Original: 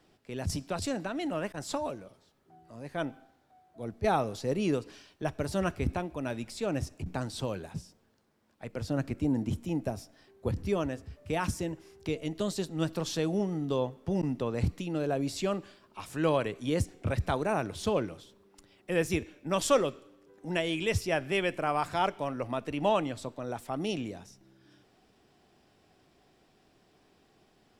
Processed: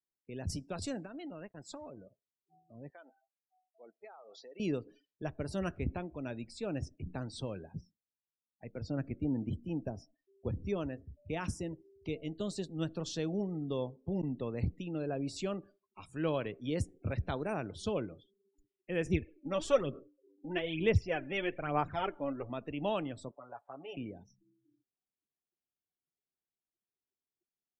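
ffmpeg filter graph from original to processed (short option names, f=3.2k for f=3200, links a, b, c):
-filter_complex "[0:a]asettb=1/sr,asplit=3[a][b][c];[a]atrim=end=1.054[d];[b]atrim=start=1.05:end=1.97,asetpts=PTS-STARTPTS,afade=t=in:d=0.004:c=qsin,afade=t=out:st=0.916:d=0.004:c=qsin,aeval=exprs='sgn(val(0))*max(abs(val(0))-0.00376,0)':c=same,acompressor=threshold=-37dB:ratio=2.5:attack=3.2:release=140:knee=1:detection=peak[e];[c]atrim=start=1.966[f];[d][e]acrossfade=d=0.004:c1=hsin:c2=qsin[g];[g][f]acrossfade=d=0.004:c1=qsin:c2=hsin,asettb=1/sr,asplit=3[h][i][j];[h]atrim=end=2.904[k];[i]atrim=start=2.9:end=4.6,asetpts=PTS-STARTPTS,afade=t=in:d=0.004:c=qsin,afade=t=out:st=1.696:d=0.004:c=qsin,highpass=680,lowpass=6.6k,acompressor=threshold=-41dB:ratio=8:attack=3.2:release=140:knee=1:detection=peak[l];[j]atrim=start=4.596[m];[k][l]acrossfade=d=0.004:c1=hsin:c2=qsin[n];[n][m]acrossfade=d=0.004:c1=qsin:c2=hsin,asettb=1/sr,asplit=3[o][p][q];[o]atrim=end=19.064[r];[p]atrim=start=19.06:end=22.5,asetpts=PTS-STARTPTS,afade=t=in:d=0.004:c=qsin,afade=t=out:st=3.436:d=0.004:c=qsin,highshelf=f=4.9k:g=-12,aphaser=in_gain=1:out_gain=1:delay=3.7:decay=0.6:speed=1.1:type=sinusoidal[s];[q]atrim=start=22.496[t];[r][s]acrossfade=d=0.004:c1=hsin:c2=qsin[u];[u][t]acrossfade=d=0.004:c1=qsin:c2=hsin,asettb=1/sr,asplit=3[v][w][x];[v]atrim=end=23.314[y];[w]atrim=start=23.31:end=23.97,asetpts=PTS-STARTPTS,afade=t=in:d=0.004:c=qsin,afade=t=out:st=0.656:d=0.004:c=qsin,acrossover=split=560 2300:gain=0.112 1 0.158[z][aa][ab];[z][aa][ab]amix=inputs=3:normalize=0,aecho=1:1:7.1:0.8,atrim=end_sample=29106[ac];[x]atrim=start=23.966[ad];[y][ac]acrossfade=d=0.004:c1=hsin:c2=qsin[ae];[ae][ad]acrossfade=d=0.004:c1=qsin:c2=hsin,afftdn=nr=35:nf=-46,equalizer=f=950:t=o:w=1.3:g=-5,volume=-4.5dB"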